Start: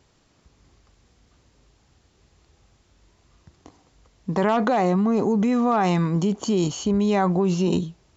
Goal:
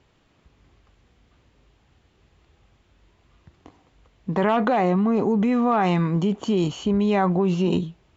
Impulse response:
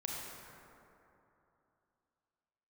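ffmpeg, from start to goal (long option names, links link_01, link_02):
-af "highshelf=frequency=4000:width_type=q:width=1.5:gain=-7.5" -ar 32000 -c:a libvorbis -b:a 64k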